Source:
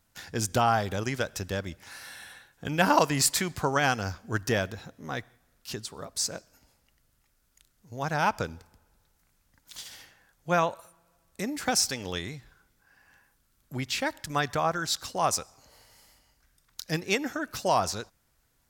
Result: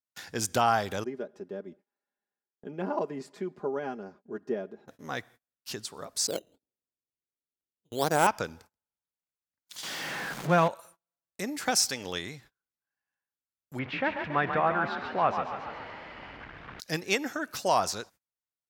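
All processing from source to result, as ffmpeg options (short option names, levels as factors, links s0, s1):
-filter_complex "[0:a]asettb=1/sr,asplit=3[s0][s1][s2];[s0]atrim=end=1.044[s3];[s1]atrim=start=1.04:end=4.88,asetpts=PTS-STARTPTS,afade=t=in:d=0.004:c=qsin,afade=t=out:st=3.836:d=0.004:c=qsin,bandpass=f=340:t=q:w=2,aecho=1:1:4.9:0.73,atrim=end_sample=169344[s4];[s2]atrim=start=4.876[s5];[s3][s4]acrossfade=d=0.004:c1=hsin:c2=qsin[s6];[s6][s5]acrossfade=d=0.004:c1=qsin:c2=hsin,asettb=1/sr,asplit=3[s7][s8][s9];[s7]atrim=end=6.274[s10];[s8]atrim=start=6.27:end=8.27,asetpts=PTS-STARTPTS,afade=t=in:d=0.004:c=qsin,afade=t=out:st=1.996:d=0.004:c=qsin,adynamicsmooth=sensitivity=6.5:basefreq=580,equalizer=f=390:w=0.98:g=12,acrusher=samples=9:mix=1:aa=0.000001:lfo=1:lforange=9:lforate=1.4[s11];[s9]atrim=start=8.266[s12];[s10][s11]acrossfade=d=0.004:c1=hsin:c2=qsin[s13];[s13][s12]acrossfade=d=0.004:c1=qsin:c2=hsin,asettb=1/sr,asplit=3[s14][s15][s16];[s14]atrim=end=9.834[s17];[s15]atrim=start=9.83:end=10.68,asetpts=PTS-STARTPTS,afade=t=in:d=0.004:c=qsin,afade=t=out:st=0.846:d=0.004:c=qsin,aeval=exprs='val(0)+0.5*0.0473*sgn(val(0))':c=same,lowpass=f=2500:p=1,lowshelf=f=120:t=q:w=3:g=-8[s18];[s16]atrim=start=10.676[s19];[s17][s18]acrossfade=d=0.004:c1=hsin:c2=qsin[s20];[s20][s19]acrossfade=d=0.004:c1=qsin:c2=hsin,asettb=1/sr,asplit=3[s21][s22][s23];[s21]atrim=end=13.794[s24];[s22]atrim=start=13.79:end=16.8,asetpts=PTS-STARTPTS,afade=t=in:d=0.004:c=qsin,afade=t=out:st=3.006:d=0.004:c=qsin,aeval=exprs='val(0)+0.5*0.0211*sgn(val(0))':c=same,lowpass=f=2500:w=0.5412,lowpass=f=2500:w=1.3066,asplit=8[s25][s26][s27][s28][s29][s30][s31][s32];[s26]adelay=139,afreqshift=36,volume=0.422[s33];[s27]adelay=278,afreqshift=72,volume=0.232[s34];[s28]adelay=417,afreqshift=108,volume=0.127[s35];[s29]adelay=556,afreqshift=144,volume=0.07[s36];[s30]adelay=695,afreqshift=180,volume=0.0385[s37];[s31]adelay=834,afreqshift=216,volume=0.0211[s38];[s32]adelay=973,afreqshift=252,volume=0.0116[s39];[s25][s33][s34][s35][s36][s37][s38][s39]amix=inputs=8:normalize=0,atrim=end_sample=132741[s40];[s23]atrim=start=16.796[s41];[s24][s40]acrossfade=d=0.004:c1=hsin:c2=qsin[s42];[s42][s41]acrossfade=d=0.004:c1=qsin:c2=hsin,highpass=f=220:p=1,agate=range=0.0316:threshold=0.00224:ratio=16:detection=peak"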